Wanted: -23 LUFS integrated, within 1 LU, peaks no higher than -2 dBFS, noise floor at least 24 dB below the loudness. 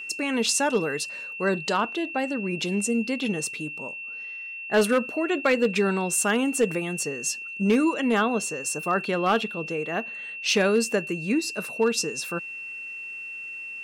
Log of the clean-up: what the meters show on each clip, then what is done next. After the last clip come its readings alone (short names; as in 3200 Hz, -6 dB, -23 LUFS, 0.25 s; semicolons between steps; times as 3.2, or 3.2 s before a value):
clipped 0.3%; flat tops at -14.0 dBFS; steady tone 2700 Hz; tone level -34 dBFS; loudness -25.5 LUFS; peak -14.0 dBFS; loudness target -23.0 LUFS
-> clip repair -14 dBFS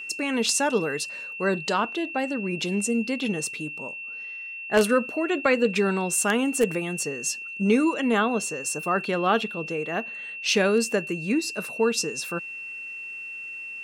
clipped 0.0%; steady tone 2700 Hz; tone level -34 dBFS
-> notch 2700 Hz, Q 30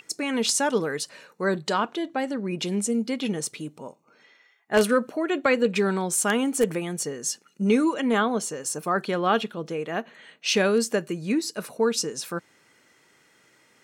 steady tone none; loudness -25.5 LUFS; peak -6.0 dBFS; loudness target -23.0 LUFS
-> gain +2.5 dB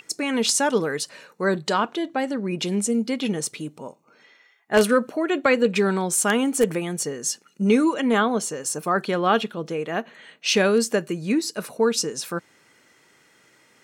loudness -23.0 LUFS; peak -3.5 dBFS; noise floor -59 dBFS